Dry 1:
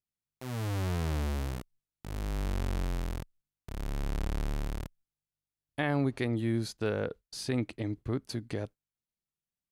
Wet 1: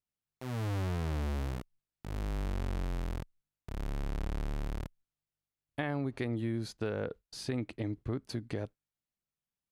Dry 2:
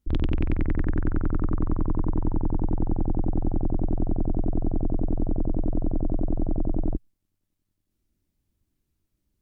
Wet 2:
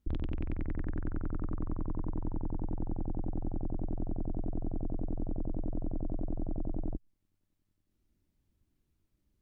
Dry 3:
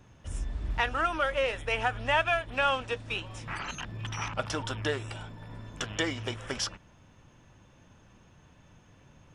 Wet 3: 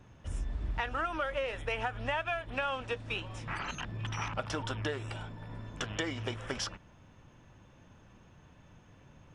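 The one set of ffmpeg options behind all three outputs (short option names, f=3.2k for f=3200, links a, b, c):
-af "highshelf=f=4.5k:g=-6.5,acompressor=threshold=-30dB:ratio=6"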